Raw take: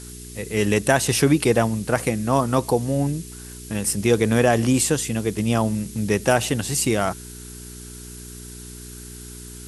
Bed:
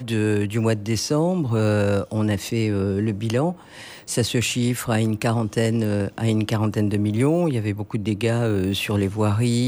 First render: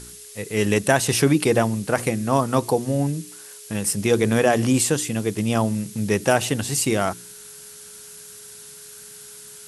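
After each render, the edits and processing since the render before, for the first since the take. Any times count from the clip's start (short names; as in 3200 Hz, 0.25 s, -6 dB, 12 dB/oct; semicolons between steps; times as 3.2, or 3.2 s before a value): de-hum 60 Hz, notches 6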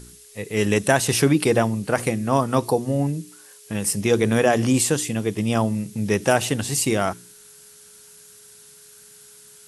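noise print and reduce 6 dB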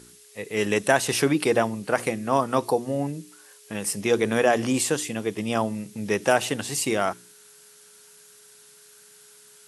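HPF 360 Hz 6 dB/oct; high shelf 4500 Hz -5.5 dB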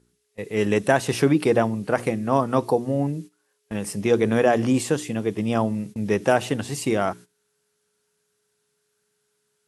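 gate -40 dBFS, range -17 dB; tilt -2 dB/oct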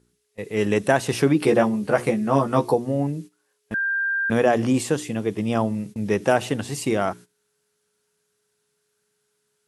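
1.4–2.74 doubler 14 ms -3 dB; 3.74–4.3 bleep 1590 Hz -20.5 dBFS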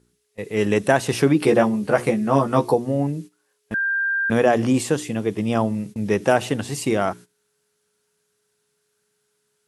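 gain +1.5 dB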